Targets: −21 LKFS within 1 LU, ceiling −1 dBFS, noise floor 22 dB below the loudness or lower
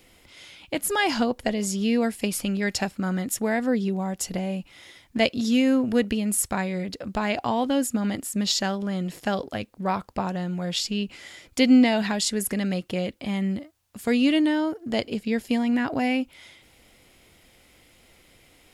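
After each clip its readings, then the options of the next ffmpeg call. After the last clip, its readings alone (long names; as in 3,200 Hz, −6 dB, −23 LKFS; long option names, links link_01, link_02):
integrated loudness −25.0 LKFS; sample peak −5.5 dBFS; target loudness −21.0 LKFS
→ -af "volume=4dB"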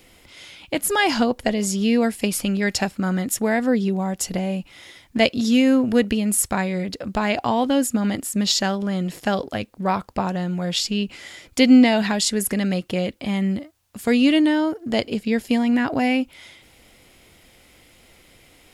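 integrated loudness −21.0 LKFS; sample peak −1.5 dBFS; background noise floor −53 dBFS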